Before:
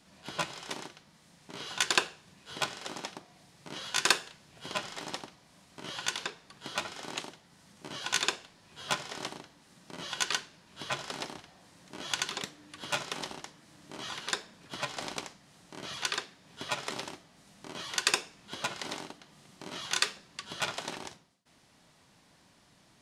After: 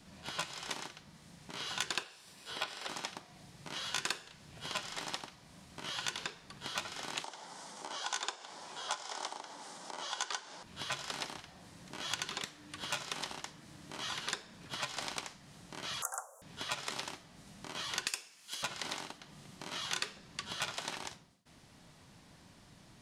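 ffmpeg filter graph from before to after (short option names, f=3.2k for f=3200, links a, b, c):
-filter_complex "[0:a]asettb=1/sr,asplit=3[a][b][c];[a]atrim=end=2.034[d];[b]atrim=start=2.03:end=2.89,asetpts=PTS-STARTPTS,afade=t=in:d=0.004:c=qsin,afade=t=out:st=0.856:d=0.004:c=qsin,acrossover=split=3500[e][f];[f]acompressor=threshold=-55dB:ratio=4:attack=1:release=60[g];[e][g]amix=inputs=2:normalize=0,bass=f=250:g=-13,treble=f=4k:g=8,bandreject=f=6.6k:w=7.4[h];[c]atrim=start=2.886[i];[d][h]acrossfade=d=0.004:c1=hsin:c2=qsin[j];[j][i]acrossfade=d=0.004:c1=qsin:c2=hsin,asettb=1/sr,asplit=3[k][l][m];[k]atrim=end=7.244[n];[l]atrim=start=7.24:end=10.63,asetpts=PTS-STARTPTS,afade=t=in:d=0.004:c=qsin,afade=t=out:st=3.386:d=0.004:c=qsin,acompressor=mode=upward:threshold=-35dB:ratio=2.5:attack=3.2:release=140:knee=2.83:detection=peak,highpass=490,equalizer=f=850:t=q:w=4:g=6,equalizer=f=1.8k:t=q:w=4:g=-5,equalizer=f=2.6k:t=q:w=4:g=-9,equalizer=f=4.1k:t=q:w=4:g=-4,lowpass=f=9.3k:w=0.5412,lowpass=f=9.3k:w=1.3066[o];[m]atrim=start=10.626[p];[n][o]acrossfade=d=0.004:c1=hsin:c2=qsin[q];[q][p]acrossfade=d=0.004:c1=qsin:c2=hsin,asettb=1/sr,asplit=3[r][s][t];[r]atrim=end=16.024[u];[s]atrim=start=16.02:end=16.42,asetpts=PTS-STARTPTS,afade=t=in:d=0.004:c=qsin,afade=t=out:st=0.396:d=0.004:c=qsin,aemphasis=mode=production:type=75kf,afreqshift=370,asuperstop=centerf=3100:order=12:qfactor=0.58[v];[t]atrim=start=16.416[w];[u][v]acrossfade=d=0.004:c1=hsin:c2=qsin[x];[x][w]acrossfade=d=0.004:c1=qsin:c2=hsin,asettb=1/sr,asplit=3[y][z][aa];[y]atrim=end=18.074[ab];[z]atrim=start=18.07:end=18.63,asetpts=PTS-STARTPTS,afade=t=in:d=0.004:c=qsin,afade=t=out:st=0.556:d=0.004:c=qsin,aderivative,bandreject=f=3.7k:w=14,acontrast=74[ac];[aa]atrim=start=18.626[ad];[ab][ac]acrossfade=d=0.004:c1=hsin:c2=qsin[ae];[ae][ad]acrossfade=d=0.004:c1=qsin:c2=hsin,lowshelf=f=180:g=9,acrossover=split=730|3500[af][ag][ah];[af]acompressor=threshold=-52dB:ratio=4[ai];[ag]acompressor=threshold=-40dB:ratio=4[aj];[ah]acompressor=threshold=-41dB:ratio=4[ak];[ai][aj][ak]amix=inputs=3:normalize=0,volume=1.5dB"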